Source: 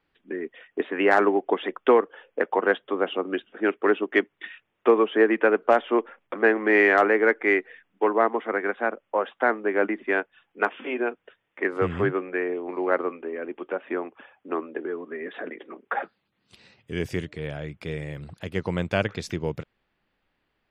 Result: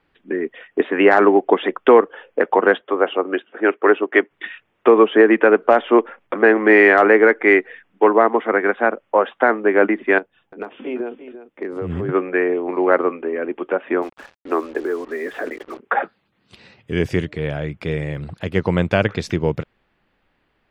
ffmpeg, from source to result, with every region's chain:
ffmpeg -i in.wav -filter_complex "[0:a]asettb=1/sr,asplit=3[link_01][link_02][link_03];[link_01]atrim=end=2.814[link_04];[link_02]atrim=start=2.81:end=4.31,asetpts=PTS-STARTPTS,afade=type=in:duration=0.004:curve=qsin,afade=type=out:start_time=1.496:duration=0.004:curve=qsin,highpass=110,bass=frequency=250:gain=-13,treble=frequency=4000:gain=-14[link_05];[link_03]atrim=start=4.306[link_06];[link_04][link_05]acrossfade=duration=0.004:curve1=hsin:curve2=qsin[link_07];[link_07][link_06]acrossfade=duration=0.004:curve1=qsin:curve2=hsin,asettb=1/sr,asplit=3[link_08][link_09][link_10];[link_08]atrim=end=10.184[link_11];[link_09]atrim=start=10.18:end=12.09,asetpts=PTS-STARTPTS,afade=type=in:duration=0.004:curve=qsin,afade=type=out:start_time=1.906:duration=0.004:curve=qsin,acompressor=threshold=-26dB:ratio=10:attack=3.2:release=140:knee=1:detection=peak,equalizer=frequency=1700:width=0.51:gain=-12,aecho=1:1:343:0.237,atrim=end_sample=84231[link_12];[link_10]atrim=start=12.086[link_13];[link_11][link_12]acrossfade=duration=0.004:curve1=hsin:curve2=qsin[link_14];[link_14][link_13]acrossfade=duration=0.004:curve1=qsin:curve2=hsin,asettb=1/sr,asplit=3[link_15][link_16][link_17];[link_15]atrim=end=14.024[link_18];[link_16]atrim=start=14.02:end=15.8,asetpts=PTS-STARTPTS,afade=type=in:duration=0.004:curve=qsin,afade=type=out:start_time=1.776:duration=0.004:curve=qsin,highpass=270,lowpass=3100,acrusher=bits=7:mix=0:aa=0.5[link_19];[link_17]atrim=start=15.796[link_20];[link_18][link_19]acrossfade=duration=0.004:curve1=hsin:curve2=qsin[link_21];[link_21][link_20]acrossfade=duration=0.004:curve1=qsin:curve2=hsin,highshelf=frequency=5000:gain=-9.5,alimiter=level_in=10dB:limit=-1dB:release=50:level=0:latency=1,volume=-1dB" out.wav

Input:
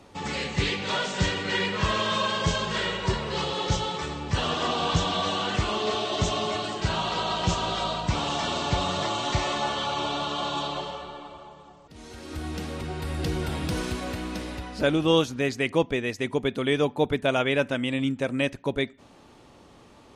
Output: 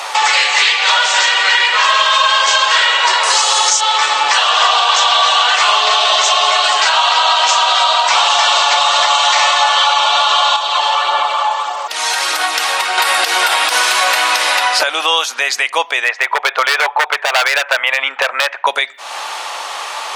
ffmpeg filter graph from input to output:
ffmpeg -i in.wav -filter_complex "[0:a]asettb=1/sr,asplit=3[link_01][link_02][link_03];[link_01]atrim=end=3.234[link_04];[link_02]atrim=start=3.23:end=3.81,asetpts=PTS-STARTPTS,afade=type=in:duration=0.004:curve=qsin,afade=type=out:start_time=0.576:duration=0.004:curve=qsin,highshelf=frequency=4900:width_type=q:width=1.5:gain=11,aeval=exprs='val(0)+0.00224*sin(2*PI*9400*n/s)':channel_layout=same[link_05];[link_03]atrim=start=3.806[link_06];[link_04][link_05]acrossfade=duration=0.004:curve1=hsin:curve2=qsin[link_07];[link_07][link_06]acrossfade=duration=0.004:curve1=qsin:curve2=hsin,asettb=1/sr,asplit=3[link_08][link_09][link_10];[link_08]atrim=end=10.564[link_11];[link_09]atrim=start=10.56:end=12.98,asetpts=PTS-STARTPTS,afade=type=in:duration=0.004:curve=qsin,afade=type=out:start_time=2.416:duration=0.004:curve=qsin,acompressor=threshold=-41dB:ratio=2.5:attack=3.2:release=140:knee=1:detection=peak,aphaser=in_gain=1:out_gain=1:delay=1.2:decay=0.26:speed=1.6:type=sinusoidal[link_12];[link_10]atrim=start=12.976[link_13];[link_11][link_12]acrossfade=duration=0.004:curve1=hsin:curve2=qsin[link_14];[link_14][link_13]acrossfade=duration=0.004:curve1=qsin:curve2=hsin,asettb=1/sr,asplit=3[link_15][link_16][link_17];[link_15]atrim=end=16.044[link_18];[link_16]atrim=start=16.04:end=18.67,asetpts=PTS-STARTPTS,afade=type=in:duration=0.004:curve=qsin,afade=type=out:start_time=2.626:duration=0.004:curve=qsin,asuperpass=centerf=990:order=4:qfactor=0.59,aeval=exprs='0.0668*(abs(mod(val(0)/0.0668+3,4)-2)-1)':channel_layout=same[link_19];[link_17]atrim=start=18.666[link_20];[link_18][link_19]acrossfade=duration=0.004:curve1=hsin:curve2=qsin[link_21];[link_21][link_20]acrossfade=duration=0.004:curve1=qsin:curve2=hsin,highpass=frequency=790:width=0.5412,highpass=frequency=790:width=1.3066,acompressor=threshold=-44dB:ratio=6,alimiter=level_in=35dB:limit=-1dB:release=50:level=0:latency=1,volume=-1dB" out.wav

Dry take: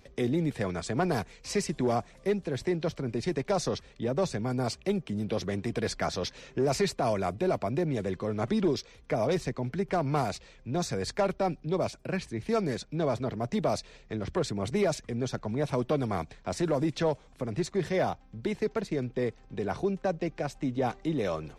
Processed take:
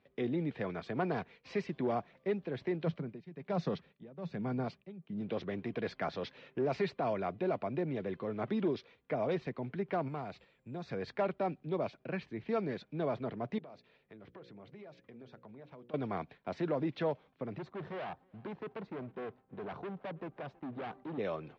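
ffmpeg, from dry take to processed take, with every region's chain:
ffmpeg -i in.wav -filter_complex "[0:a]asettb=1/sr,asplit=3[link_01][link_02][link_03];[link_01]atrim=end=2.864[link_04];[link_02]atrim=start=2.86:end=5.21,asetpts=PTS-STARTPTS,afade=type=in:duration=0.004:curve=qsin,afade=type=out:start_time=2.346:duration=0.004:curve=qsin,equalizer=frequency=170:width=2.6:gain=11,tremolo=f=1.2:d=0.89[link_05];[link_03]atrim=start=5.206[link_06];[link_04][link_05]acrossfade=duration=0.004:curve1=hsin:curve2=qsin[link_07];[link_07][link_06]acrossfade=duration=0.004:curve1=qsin:curve2=hsin,asettb=1/sr,asplit=3[link_08][link_09][link_10];[link_08]atrim=end=10.084[link_11];[link_09]atrim=start=10.08:end=10.88,asetpts=PTS-STARTPTS,afade=type=in:duration=0.004:curve=qsin,afade=type=out:start_time=0.796:duration=0.004:curve=qsin,lowshelf=frequency=170:gain=4.5,acompressor=threshold=-43dB:ratio=1.5:attack=3.2:release=140:knee=1:detection=peak,aeval=exprs='val(0)+0.00126*sin(2*PI*7400*n/s)':channel_layout=same[link_12];[link_10]atrim=start=10.876[link_13];[link_11][link_12]acrossfade=duration=0.004:curve1=hsin:curve2=qsin[link_14];[link_14][link_13]acrossfade=duration=0.004:curve1=qsin:curve2=hsin,asettb=1/sr,asplit=3[link_15][link_16][link_17];[link_15]atrim=end=13.584[link_18];[link_16]atrim=start=13.58:end=15.94,asetpts=PTS-STARTPTS,afade=type=in:duration=0.004:curve=qsin,afade=type=out:start_time=2.356:duration=0.004:curve=qsin,lowpass=8100,bandreject=frequency=60:width_type=h:width=6,bandreject=frequency=120:width_type=h:width=6,bandreject=frequency=180:width_type=h:width=6,bandreject=frequency=240:width_type=h:width=6,bandreject=frequency=300:width_type=h:width=6,bandreject=frequency=360:width_type=h:width=6,bandreject=frequency=420:width_type=h:width=6,bandreject=frequency=480:width_type=h:width=6,bandreject=frequency=540:width_type=h:width=6,acompressor=threshold=-42dB:ratio=12:attack=3.2:release=140:knee=1:detection=peak[link_19];[link_17]atrim=start=15.936[link_20];[link_18][link_19]acrossfade=duration=0.004:curve1=hsin:curve2=qsin[link_21];[link_21][link_20]acrossfade=duration=0.004:curve1=qsin:curve2=hsin,asettb=1/sr,asplit=3[link_22][link_23][link_24];[link_22]atrim=end=17.584[link_25];[link_23]atrim=start=17.58:end=21.18,asetpts=PTS-STARTPTS,afade=type=in:duration=0.004:curve=qsin,afade=type=out:start_time=3.596:duration=0.004:curve=qsin,highshelf=frequency=1600:width_type=q:width=1.5:gain=-8,asoftclip=type=hard:threshold=-33dB,aecho=1:1:322|644:0.0631|0.0164,atrim=end_sample=158760[link_26];[link_24]atrim=start=21.176[link_27];[link_25][link_26]acrossfade=duration=0.004:curve1=hsin:curve2=qsin[link_28];[link_28][link_27]acrossfade=duration=0.004:curve1=qsin:curve2=hsin,highpass=140,agate=range=-7dB:threshold=-49dB:ratio=16:detection=peak,lowpass=frequency=3500:width=0.5412,lowpass=frequency=3500:width=1.3066,volume=-5.5dB" out.wav

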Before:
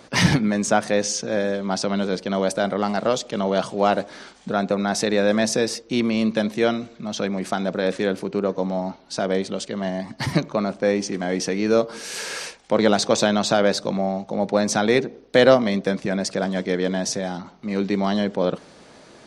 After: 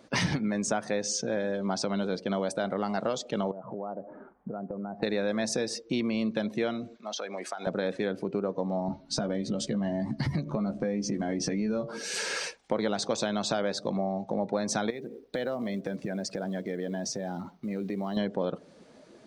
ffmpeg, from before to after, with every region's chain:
ffmpeg -i in.wav -filter_complex "[0:a]asettb=1/sr,asplit=3[link_01][link_02][link_03];[link_01]atrim=end=3.514[link_04];[link_02]atrim=start=3.51:end=5.03,asetpts=PTS-STARTPTS,afade=type=in:duration=0.004:curve=qsin,afade=type=out:start_time=1.516:duration=0.004:curve=qsin,lowpass=frequency=1300:width=0.5412,lowpass=frequency=1300:width=1.3066,acompressor=threshold=-32dB:ratio=8:attack=3.2:release=140:knee=1:detection=peak[link_05];[link_03]atrim=start=5.026[link_06];[link_04][link_05]acrossfade=duration=0.004:curve1=hsin:curve2=qsin[link_07];[link_07][link_06]acrossfade=duration=0.004:curve1=qsin:curve2=hsin,asettb=1/sr,asplit=3[link_08][link_09][link_10];[link_08]atrim=end=6.974[link_11];[link_09]atrim=start=6.97:end=7.67,asetpts=PTS-STARTPTS,afade=type=in:duration=0.004:curve=qsin,afade=type=out:start_time=0.696:duration=0.004:curve=qsin,highpass=560,acompressor=threshold=-29dB:ratio=16:attack=3.2:release=140:knee=1:detection=peak[link_12];[link_10]atrim=start=7.666[link_13];[link_11][link_12]acrossfade=duration=0.004:curve1=hsin:curve2=qsin[link_14];[link_14][link_13]acrossfade=duration=0.004:curve1=qsin:curve2=hsin,asettb=1/sr,asplit=3[link_15][link_16][link_17];[link_15]atrim=end=8.884[link_18];[link_16]atrim=start=8.88:end=11.89,asetpts=PTS-STARTPTS,afade=type=in:duration=0.004:curve=qsin,afade=type=out:start_time=3.006:duration=0.004:curve=qsin,bass=frequency=250:gain=10,treble=frequency=4000:gain=1,asplit=2[link_19][link_20];[link_20]adelay=14,volume=-5dB[link_21];[link_19][link_21]amix=inputs=2:normalize=0,atrim=end_sample=132741,acompressor=threshold=-24dB:ratio=2.5:attack=3.2:release=140:knee=1:detection=peak[link_22];[link_17]atrim=start=11.886[link_23];[link_18][link_22]acrossfade=duration=0.004:curve1=hsin:curve2=qsin[link_24];[link_24][link_23]acrossfade=duration=0.004:curve1=qsin:curve2=hsin,asettb=1/sr,asplit=3[link_25][link_26][link_27];[link_25]atrim=end=14.904[link_28];[link_26]atrim=start=14.9:end=18.17,asetpts=PTS-STARTPTS,afade=type=in:duration=0.004:curve=qsin,afade=type=out:start_time=3.266:duration=0.004:curve=qsin,acompressor=threshold=-31dB:ratio=3:attack=3.2:release=140:knee=1:detection=peak,acrusher=bits=6:mode=log:mix=0:aa=0.000001[link_29];[link_27]atrim=start=18.166[link_30];[link_28][link_29]acrossfade=duration=0.004:curve1=hsin:curve2=qsin[link_31];[link_31][link_30]acrossfade=duration=0.004:curve1=qsin:curve2=hsin,afftdn=noise_reduction=12:noise_floor=-38,acompressor=threshold=-27dB:ratio=4" out.wav

